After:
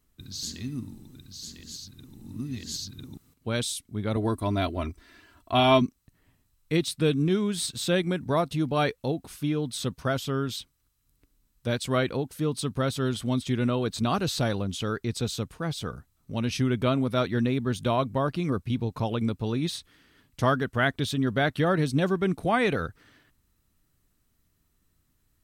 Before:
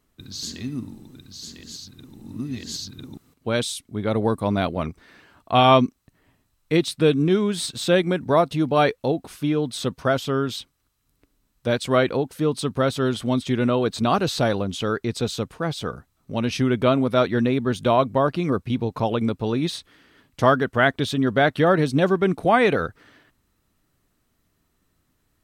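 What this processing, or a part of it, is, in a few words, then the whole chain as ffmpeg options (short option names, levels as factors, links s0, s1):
smiley-face EQ: -filter_complex "[0:a]lowshelf=f=130:g=7.5,equalizer=f=600:t=o:w=1.7:g=-3,highshelf=f=5500:g=6.5,asettb=1/sr,asplit=3[s0][s1][s2];[s0]atrim=end=4.164[s3];[s1]atrim=start=4.16:end=5.82,asetpts=PTS-STARTPTS,afade=t=in:d=0.004:c=qsin,afade=t=out:st=1.656:d=0.004:c=qsin,aecho=1:1:3:0.71,atrim=end_sample=73206[s4];[s2]atrim=start=5.816[s5];[s3][s4]acrossfade=d=0.004:c1=hsin:c2=qsin[s6];[s6][s5]acrossfade=d=0.004:c1=qsin:c2=hsin,volume=0.531"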